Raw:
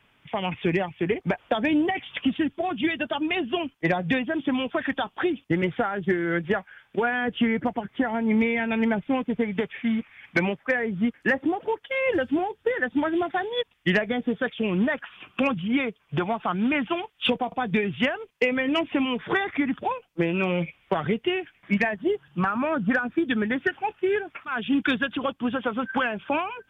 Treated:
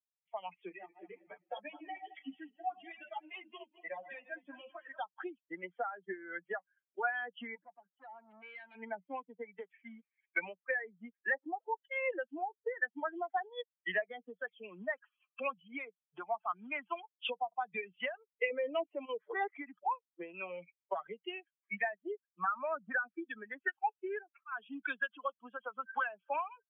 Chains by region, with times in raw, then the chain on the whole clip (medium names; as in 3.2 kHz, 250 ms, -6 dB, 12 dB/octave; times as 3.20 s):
0.69–4.99 s: backward echo that repeats 107 ms, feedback 63%, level -6.5 dB + three-phase chorus
7.55–8.75 s: hard clipper -29 dBFS + three bands expanded up and down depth 100%
18.50–19.52 s: peaking EQ 470 Hz +12.5 dB 1.1 oct + level held to a coarse grid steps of 11 dB
whole clip: expander on every frequency bin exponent 2; Chebyshev band-pass 180–3300 Hz, order 5; three-band isolator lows -24 dB, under 530 Hz, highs -12 dB, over 2.1 kHz; trim -1.5 dB